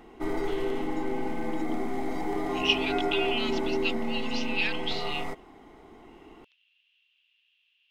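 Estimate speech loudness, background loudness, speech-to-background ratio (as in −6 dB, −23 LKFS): −31.0 LKFS, −31.5 LKFS, 0.5 dB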